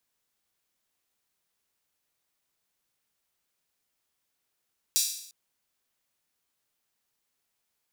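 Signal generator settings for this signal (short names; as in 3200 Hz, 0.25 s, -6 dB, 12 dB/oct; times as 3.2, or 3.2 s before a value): open hi-hat length 0.35 s, high-pass 4800 Hz, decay 0.69 s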